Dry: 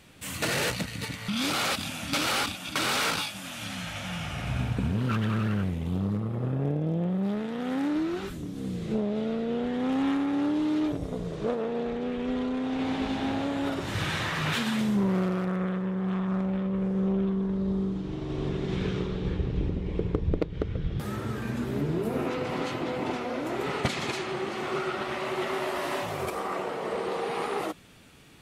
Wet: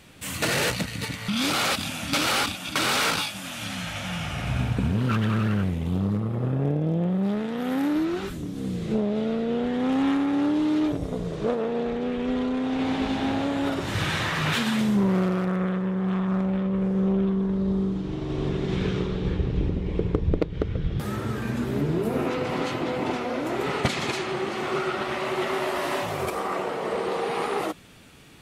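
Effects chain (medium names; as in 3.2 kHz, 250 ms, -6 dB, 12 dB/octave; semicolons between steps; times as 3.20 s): 7.57–8.05 s: peaking EQ 12 kHz +14 dB 0.26 oct; trim +3.5 dB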